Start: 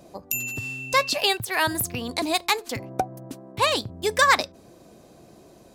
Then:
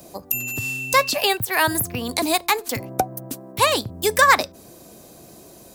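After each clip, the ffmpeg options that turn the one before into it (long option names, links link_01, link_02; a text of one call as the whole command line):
ffmpeg -i in.wav -filter_complex "[0:a]aemphasis=mode=production:type=50fm,acrossover=split=230|640|2400[link_01][link_02][link_03][link_04];[link_04]acompressor=threshold=-27dB:ratio=6[link_05];[link_01][link_02][link_03][link_05]amix=inputs=4:normalize=0,volume=4dB" out.wav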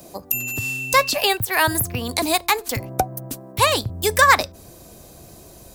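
ffmpeg -i in.wav -af "asubboost=boost=4:cutoff=110,volume=1dB" out.wav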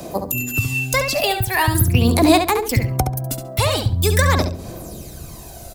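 ffmpeg -i in.wav -filter_complex "[0:a]acrossover=split=430[link_01][link_02];[link_02]acompressor=threshold=-31dB:ratio=2[link_03];[link_01][link_03]amix=inputs=2:normalize=0,aphaser=in_gain=1:out_gain=1:delay=1.5:decay=0.56:speed=0.43:type=sinusoidal,asplit=2[link_04][link_05];[link_05]adelay=69,lowpass=frequency=4900:poles=1,volume=-6dB,asplit=2[link_06][link_07];[link_07]adelay=69,lowpass=frequency=4900:poles=1,volume=0.24,asplit=2[link_08][link_09];[link_09]adelay=69,lowpass=frequency=4900:poles=1,volume=0.24[link_10];[link_06][link_08][link_10]amix=inputs=3:normalize=0[link_11];[link_04][link_11]amix=inputs=2:normalize=0,volume=5dB" out.wav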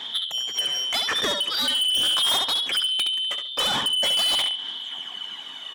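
ffmpeg -i in.wav -af "afftfilt=real='real(if(lt(b,272),68*(eq(floor(b/68),0)*2+eq(floor(b/68),1)*3+eq(floor(b/68),2)*0+eq(floor(b/68),3)*1)+mod(b,68),b),0)':imag='imag(if(lt(b,272),68*(eq(floor(b/68),0)*2+eq(floor(b/68),1)*3+eq(floor(b/68),2)*0+eq(floor(b/68),3)*1)+mod(b,68),b),0)':win_size=2048:overlap=0.75,highpass=190,lowpass=2600,asoftclip=type=tanh:threshold=-24.5dB,volume=5dB" out.wav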